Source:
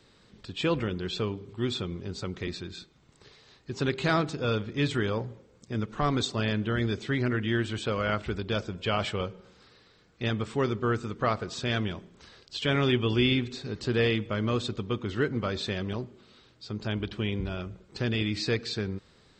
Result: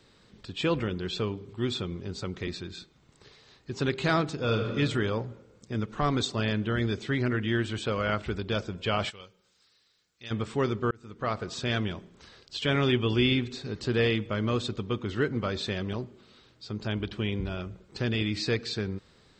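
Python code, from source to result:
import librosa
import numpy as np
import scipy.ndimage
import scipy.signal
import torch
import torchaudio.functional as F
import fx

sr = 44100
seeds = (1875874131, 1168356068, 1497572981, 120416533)

y = fx.reverb_throw(x, sr, start_s=4.35, length_s=0.41, rt60_s=1.6, drr_db=3.5)
y = fx.pre_emphasis(y, sr, coefficient=0.9, at=(9.09, 10.3), fade=0.02)
y = fx.edit(y, sr, fx.fade_in_span(start_s=10.91, length_s=0.55), tone=tone)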